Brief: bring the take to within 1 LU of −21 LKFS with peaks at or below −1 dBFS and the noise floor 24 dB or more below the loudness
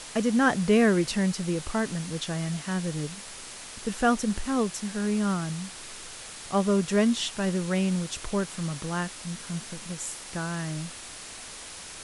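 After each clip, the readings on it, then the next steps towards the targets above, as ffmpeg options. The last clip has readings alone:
background noise floor −42 dBFS; target noise floor −52 dBFS; integrated loudness −28.0 LKFS; sample peak −10.5 dBFS; target loudness −21.0 LKFS
→ -af "afftdn=noise_reduction=10:noise_floor=-42"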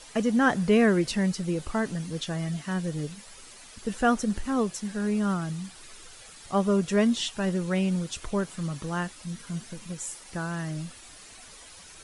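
background noise floor −49 dBFS; target noise floor −52 dBFS
→ -af "afftdn=noise_reduction=6:noise_floor=-49"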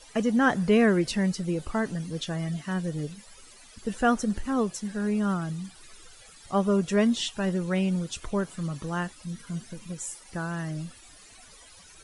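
background noise floor −52 dBFS; integrated loudness −28.0 LKFS; sample peak −10.5 dBFS; target loudness −21.0 LKFS
→ -af "volume=7dB"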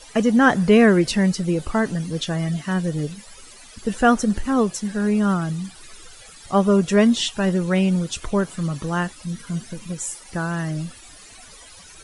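integrated loudness −21.0 LKFS; sample peak −3.5 dBFS; background noise floor −45 dBFS

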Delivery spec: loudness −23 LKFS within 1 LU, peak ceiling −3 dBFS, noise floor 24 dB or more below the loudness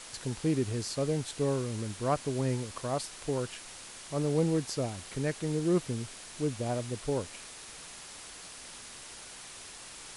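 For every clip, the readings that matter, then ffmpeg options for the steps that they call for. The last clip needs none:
background noise floor −47 dBFS; target noise floor −57 dBFS; integrated loudness −32.5 LKFS; sample peak −16.0 dBFS; target loudness −23.0 LKFS
→ -af "afftdn=noise_reduction=10:noise_floor=-47"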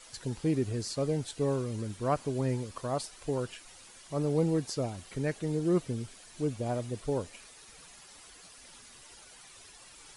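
background noise floor −54 dBFS; target noise floor −57 dBFS
→ -af "afftdn=noise_reduction=6:noise_floor=-54"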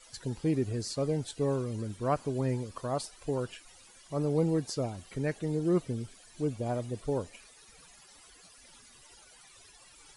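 background noise floor −57 dBFS; integrated loudness −33.0 LKFS; sample peak −16.0 dBFS; target loudness −23.0 LKFS
→ -af "volume=10dB"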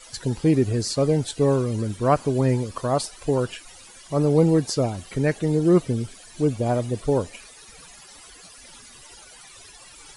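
integrated loudness −23.0 LKFS; sample peak −6.0 dBFS; background noise floor −47 dBFS

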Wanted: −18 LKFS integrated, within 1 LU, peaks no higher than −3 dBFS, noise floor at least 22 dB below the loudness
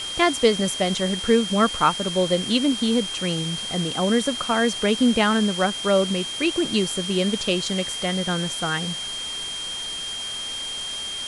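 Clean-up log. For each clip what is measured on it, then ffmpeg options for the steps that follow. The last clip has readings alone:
interfering tone 3,200 Hz; level of the tone −29 dBFS; background noise floor −31 dBFS; target noise floor −45 dBFS; integrated loudness −22.5 LKFS; sample peak −5.0 dBFS; target loudness −18.0 LKFS
→ -af "bandreject=frequency=3200:width=30"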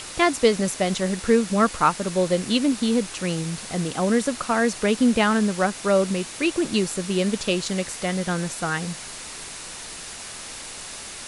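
interfering tone none found; background noise floor −37 dBFS; target noise floor −45 dBFS
→ -af "afftdn=noise_reduction=8:noise_floor=-37"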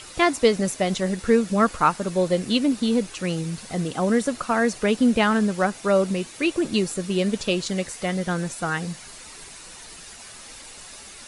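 background noise floor −43 dBFS; target noise floor −45 dBFS
→ -af "afftdn=noise_reduction=6:noise_floor=-43"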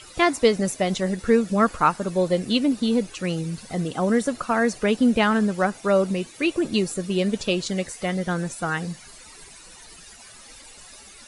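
background noise floor −46 dBFS; integrated loudness −23.0 LKFS; sample peak −5.5 dBFS; target loudness −18.0 LKFS
→ -af "volume=5dB,alimiter=limit=-3dB:level=0:latency=1"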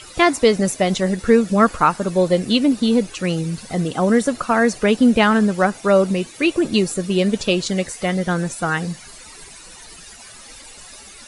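integrated loudness −18.0 LKFS; sample peak −3.0 dBFS; background noise floor −41 dBFS

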